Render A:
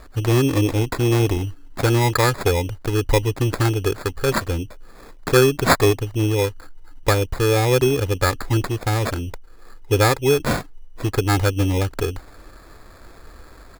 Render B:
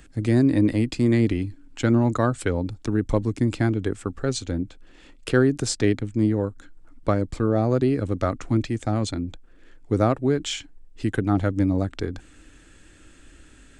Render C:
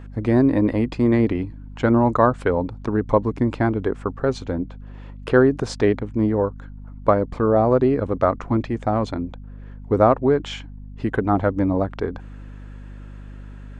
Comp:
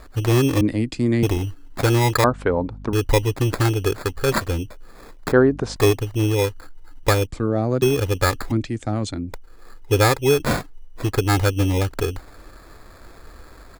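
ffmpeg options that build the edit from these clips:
-filter_complex "[1:a]asplit=3[s0][s1][s2];[2:a]asplit=2[s3][s4];[0:a]asplit=6[s5][s6][s7][s8][s9][s10];[s5]atrim=end=0.612[s11];[s0]atrim=start=0.608:end=1.232[s12];[s6]atrim=start=1.228:end=2.242[s13];[s3]atrim=start=2.238:end=2.932[s14];[s7]atrim=start=2.928:end=5.322[s15];[s4]atrim=start=5.318:end=5.762[s16];[s8]atrim=start=5.758:end=7.272[s17];[s1]atrim=start=7.268:end=7.822[s18];[s9]atrim=start=7.818:end=8.52[s19];[s2]atrim=start=8.5:end=9.33[s20];[s10]atrim=start=9.31[s21];[s11][s12]acrossfade=d=0.004:c1=hsin:c2=hsin[s22];[s22][s13]acrossfade=d=0.004:c1=hsin:c2=hsin[s23];[s23][s14]acrossfade=d=0.004:c1=hsin:c2=hsin[s24];[s24][s15]acrossfade=d=0.004:c1=hsin:c2=hsin[s25];[s25][s16]acrossfade=d=0.004:c1=hsin:c2=hsin[s26];[s26][s17]acrossfade=d=0.004:c1=hsin:c2=hsin[s27];[s27][s18]acrossfade=d=0.004:c1=hsin:c2=hsin[s28];[s28][s19]acrossfade=d=0.004:c1=hsin:c2=hsin[s29];[s29][s20]acrossfade=d=0.02:c1=tri:c2=tri[s30];[s30][s21]acrossfade=d=0.02:c1=tri:c2=tri"

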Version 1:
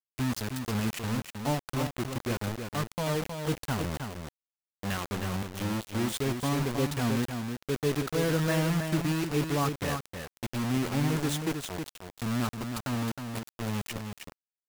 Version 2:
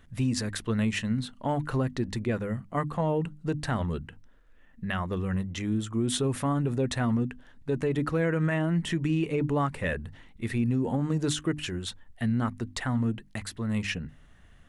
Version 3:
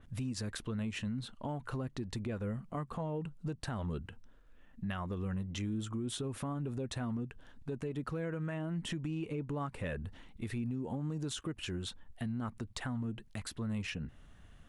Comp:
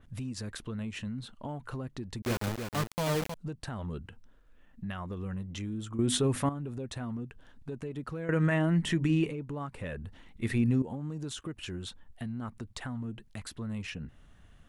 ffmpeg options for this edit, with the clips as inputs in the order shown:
-filter_complex "[1:a]asplit=3[s0][s1][s2];[2:a]asplit=5[s3][s4][s5][s6][s7];[s3]atrim=end=2.222[s8];[0:a]atrim=start=2.218:end=3.342[s9];[s4]atrim=start=3.338:end=5.992[s10];[s0]atrim=start=5.988:end=6.492[s11];[s5]atrim=start=6.488:end=8.292[s12];[s1]atrim=start=8.288:end=9.312[s13];[s6]atrim=start=9.308:end=10.262[s14];[s2]atrim=start=10.258:end=10.822[s15];[s7]atrim=start=10.818[s16];[s8][s9]acrossfade=d=0.004:c1=hsin:c2=hsin[s17];[s17][s10]acrossfade=d=0.004:c1=hsin:c2=hsin[s18];[s18][s11]acrossfade=d=0.004:c1=hsin:c2=hsin[s19];[s19][s12]acrossfade=d=0.004:c1=hsin:c2=hsin[s20];[s20][s13]acrossfade=d=0.004:c1=hsin:c2=hsin[s21];[s21][s14]acrossfade=d=0.004:c1=hsin:c2=hsin[s22];[s22][s15]acrossfade=d=0.004:c1=hsin:c2=hsin[s23];[s23][s16]acrossfade=d=0.004:c1=hsin:c2=hsin"

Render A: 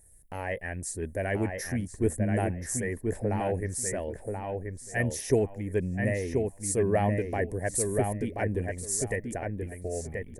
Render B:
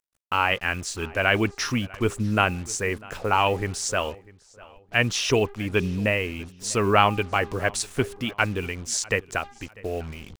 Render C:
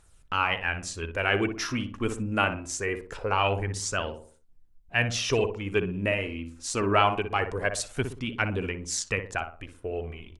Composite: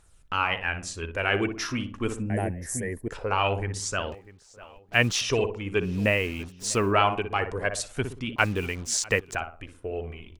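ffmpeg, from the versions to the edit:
-filter_complex "[1:a]asplit=3[s0][s1][s2];[2:a]asplit=5[s3][s4][s5][s6][s7];[s3]atrim=end=2.302[s8];[0:a]atrim=start=2.298:end=3.082[s9];[s4]atrim=start=3.078:end=4.122[s10];[s0]atrim=start=4.118:end=5.212[s11];[s5]atrim=start=5.208:end=6.02[s12];[s1]atrim=start=5.78:end=6.96[s13];[s6]atrim=start=6.72:end=8.362[s14];[s2]atrim=start=8.358:end=9.352[s15];[s7]atrim=start=9.348[s16];[s8][s9]acrossfade=d=0.004:c1=hsin:c2=hsin[s17];[s17][s10]acrossfade=d=0.004:c1=hsin:c2=hsin[s18];[s18][s11]acrossfade=d=0.004:c1=hsin:c2=hsin[s19];[s19][s12]acrossfade=d=0.004:c1=hsin:c2=hsin[s20];[s20][s13]acrossfade=d=0.24:c1=tri:c2=tri[s21];[s21][s14]acrossfade=d=0.24:c1=tri:c2=tri[s22];[s22][s15]acrossfade=d=0.004:c1=hsin:c2=hsin[s23];[s23][s16]acrossfade=d=0.004:c1=hsin:c2=hsin"

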